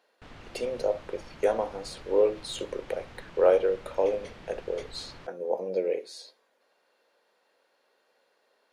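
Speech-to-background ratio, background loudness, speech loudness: 19.5 dB, -49.0 LUFS, -29.5 LUFS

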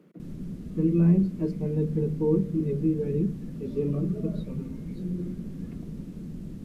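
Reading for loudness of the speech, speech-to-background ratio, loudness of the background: -27.5 LUFS, 11.0 dB, -38.5 LUFS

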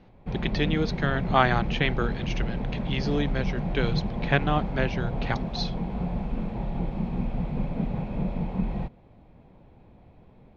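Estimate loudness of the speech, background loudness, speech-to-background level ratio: -28.5 LUFS, -31.0 LUFS, 2.5 dB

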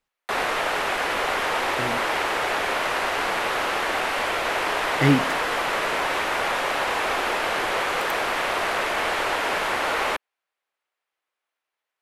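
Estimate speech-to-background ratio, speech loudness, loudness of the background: -1.5 dB, -25.5 LUFS, -24.0 LUFS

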